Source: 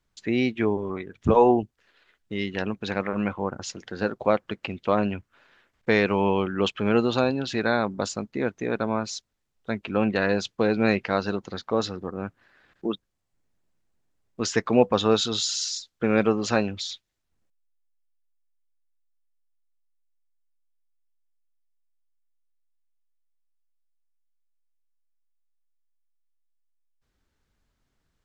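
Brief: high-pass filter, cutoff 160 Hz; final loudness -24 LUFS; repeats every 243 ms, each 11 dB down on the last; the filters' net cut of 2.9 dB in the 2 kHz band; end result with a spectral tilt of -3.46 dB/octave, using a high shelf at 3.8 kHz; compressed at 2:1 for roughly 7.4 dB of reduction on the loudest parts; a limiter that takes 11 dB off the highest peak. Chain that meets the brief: high-pass 160 Hz; peaking EQ 2 kHz -6 dB; treble shelf 3.8 kHz +8 dB; compression 2:1, threshold -27 dBFS; peak limiter -22.5 dBFS; feedback delay 243 ms, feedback 28%, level -11 dB; trim +10 dB

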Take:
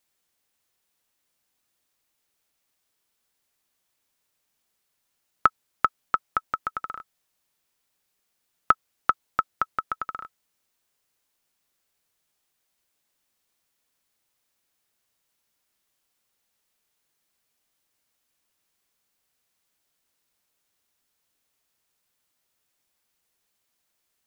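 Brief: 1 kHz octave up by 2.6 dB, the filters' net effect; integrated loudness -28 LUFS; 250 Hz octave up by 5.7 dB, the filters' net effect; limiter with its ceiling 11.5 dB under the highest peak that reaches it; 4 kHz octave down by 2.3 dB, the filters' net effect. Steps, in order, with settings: peaking EQ 250 Hz +7 dB; peaking EQ 1 kHz +4 dB; peaking EQ 4 kHz -3.5 dB; trim +4.5 dB; peak limiter -7.5 dBFS

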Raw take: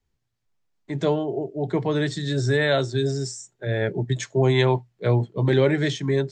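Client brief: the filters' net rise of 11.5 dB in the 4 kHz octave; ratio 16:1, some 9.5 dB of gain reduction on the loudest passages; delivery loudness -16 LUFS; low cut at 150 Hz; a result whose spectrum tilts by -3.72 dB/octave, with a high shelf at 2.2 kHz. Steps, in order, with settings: high-pass 150 Hz; treble shelf 2.2 kHz +8 dB; peaking EQ 4 kHz +6.5 dB; compression 16:1, threshold -21 dBFS; trim +10.5 dB

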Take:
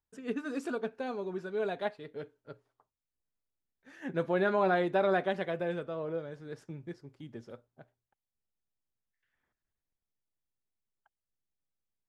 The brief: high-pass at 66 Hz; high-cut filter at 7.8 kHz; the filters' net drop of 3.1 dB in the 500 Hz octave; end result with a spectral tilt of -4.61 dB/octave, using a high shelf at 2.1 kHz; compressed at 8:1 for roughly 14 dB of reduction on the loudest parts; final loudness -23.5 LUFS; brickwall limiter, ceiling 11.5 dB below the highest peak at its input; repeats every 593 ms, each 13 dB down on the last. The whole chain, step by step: high-pass 66 Hz; low-pass 7.8 kHz; peaking EQ 500 Hz -4.5 dB; treble shelf 2.1 kHz +7.5 dB; compression 8:1, threshold -39 dBFS; peak limiter -39 dBFS; feedback delay 593 ms, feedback 22%, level -13 dB; trim +26 dB

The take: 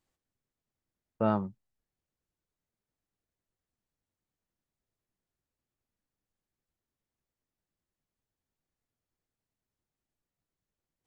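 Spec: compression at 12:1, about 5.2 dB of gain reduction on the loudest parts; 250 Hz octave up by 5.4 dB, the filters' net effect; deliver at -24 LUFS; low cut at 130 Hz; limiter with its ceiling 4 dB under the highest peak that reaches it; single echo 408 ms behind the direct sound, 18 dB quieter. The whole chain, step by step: high-pass 130 Hz; peaking EQ 250 Hz +7.5 dB; compression 12:1, threshold -24 dBFS; peak limiter -21 dBFS; delay 408 ms -18 dB; trim +10 dB

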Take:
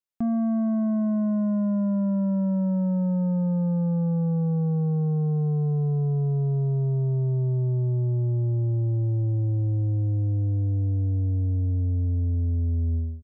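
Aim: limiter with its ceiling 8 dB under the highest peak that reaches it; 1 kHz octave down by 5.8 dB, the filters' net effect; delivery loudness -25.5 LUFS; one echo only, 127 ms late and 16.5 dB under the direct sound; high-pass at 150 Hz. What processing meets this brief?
high-pass 150 Hz; peaking EQ 1 kHz -8.5 dB; peak limiter -28.5 dBFS; delay 127 ms -16.5 dB; trim +8.5 dB

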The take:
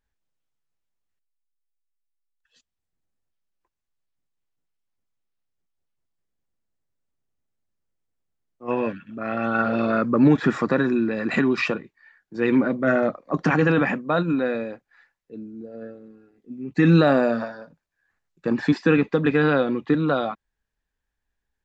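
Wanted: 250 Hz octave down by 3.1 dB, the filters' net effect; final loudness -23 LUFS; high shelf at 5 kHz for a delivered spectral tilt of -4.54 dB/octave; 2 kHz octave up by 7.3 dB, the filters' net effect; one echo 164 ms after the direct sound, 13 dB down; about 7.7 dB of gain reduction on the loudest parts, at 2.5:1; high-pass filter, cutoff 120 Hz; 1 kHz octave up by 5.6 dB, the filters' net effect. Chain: high-pass 120 Hz; peaking EQ 250 Hz -4 dB; peaking EQ 1 kHz +5 dB; peaking EQ 2 kHz +8.5 dB; treble shelf 5 kHz -3.5 dB; compression 2.5:1, threshold -24 dBFS; delay 164 ms -13 dB; trim +3.5 dB

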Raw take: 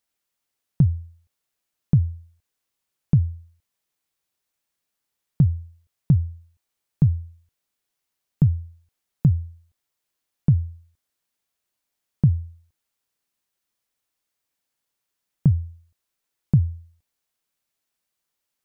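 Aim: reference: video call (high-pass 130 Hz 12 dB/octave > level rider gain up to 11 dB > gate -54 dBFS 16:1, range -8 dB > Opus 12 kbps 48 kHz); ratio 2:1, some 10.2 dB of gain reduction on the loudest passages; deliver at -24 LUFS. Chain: compression 2:1, threshold -31 dBFS; high-pass 130 Hz 12 dB/octave; level rider gain up to 11 dB; gate -54 dBFS 16:1, range -8 dB; trim +7 dB; Opus 12 kbps 48 kHz

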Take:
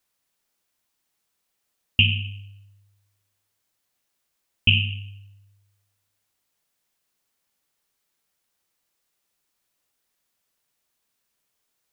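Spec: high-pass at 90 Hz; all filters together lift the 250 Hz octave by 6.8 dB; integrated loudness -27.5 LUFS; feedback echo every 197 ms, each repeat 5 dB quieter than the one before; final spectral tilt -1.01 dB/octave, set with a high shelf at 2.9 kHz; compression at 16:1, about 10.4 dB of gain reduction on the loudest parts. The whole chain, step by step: high-pass 90 Hz; peaking EQ 250 Hz +8 dB; treble shelf 2.9 kHz +8.5 dB; compression 16:1, threshold -19 dBFS; feedback delay 197 ms, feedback 56%, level -5 dB; trim +0.5 dB

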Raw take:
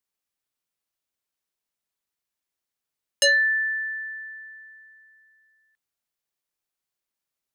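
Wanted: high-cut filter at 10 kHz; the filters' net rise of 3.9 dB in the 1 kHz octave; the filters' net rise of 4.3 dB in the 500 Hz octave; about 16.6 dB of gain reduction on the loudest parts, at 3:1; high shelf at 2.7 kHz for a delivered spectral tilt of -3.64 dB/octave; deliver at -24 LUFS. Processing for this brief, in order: low-pass 10 kHz; peaking EQ 500 Hz +3.5 dB; peaking EQ 1 kHz +5.5 dB; treble shelf 2.7 kHz -7.5 dB; compression 3:1, threshold -39 dBFS; trim +12.5 dB

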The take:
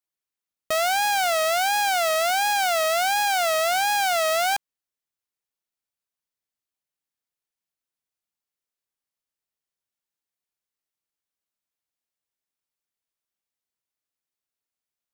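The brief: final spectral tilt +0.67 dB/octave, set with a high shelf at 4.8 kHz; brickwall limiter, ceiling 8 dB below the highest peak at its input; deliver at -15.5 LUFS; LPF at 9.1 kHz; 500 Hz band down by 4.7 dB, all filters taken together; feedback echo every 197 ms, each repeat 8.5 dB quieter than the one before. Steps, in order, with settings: low-pass 9.1 kHz; peaking EQ 500 Hz -8 dB; treble shelf 4.8 kHz +8.5 dB; peak limiter -18.5 dBFS; feedback delay 197 ms, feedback 38%, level -8.5 dB; trim +13.5 dB

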